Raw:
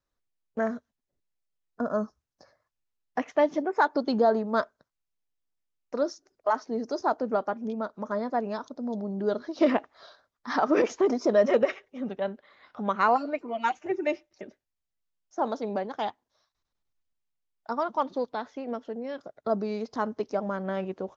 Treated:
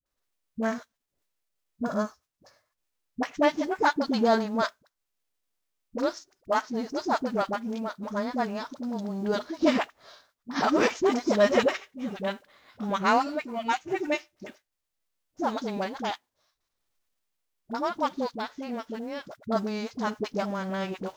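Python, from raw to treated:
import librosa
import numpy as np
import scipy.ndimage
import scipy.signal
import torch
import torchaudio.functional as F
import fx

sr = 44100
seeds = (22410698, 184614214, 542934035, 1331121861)

y = fx.envelope_flatten(x, sr, power=0.6)
y = fx.dispersion(y, sr, late='highs', ms=59.0, hz=500.0)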